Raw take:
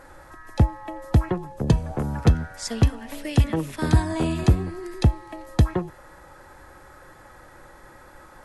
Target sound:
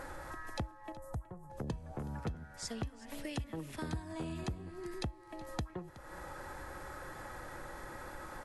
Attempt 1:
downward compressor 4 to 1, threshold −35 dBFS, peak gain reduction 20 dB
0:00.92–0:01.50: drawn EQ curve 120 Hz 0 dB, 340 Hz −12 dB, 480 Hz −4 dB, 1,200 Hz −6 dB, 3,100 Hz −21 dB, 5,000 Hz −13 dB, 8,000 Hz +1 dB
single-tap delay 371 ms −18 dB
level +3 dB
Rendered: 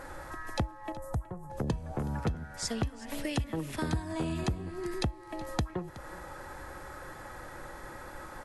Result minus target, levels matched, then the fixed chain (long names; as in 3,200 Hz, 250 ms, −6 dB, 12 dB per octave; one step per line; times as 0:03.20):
downward compressor: peak gain reduction −7.5 dB
downward compressor 4 to 1, threshold −45 dBFS, peak gain reduction 27.5 dB
0:00.92–0:01.50: drawn EQ curve 120 Hz 0 dB, 340 Hz −12 dB, 480 Hz −4 dB, 1,200 Hz −6 dB, 3,100 Hz −21 dB, 5,000 Hz −13 dB, 8,000 Hz +1 dB
single-tap delay 371 ms −18 dB
level +3 dB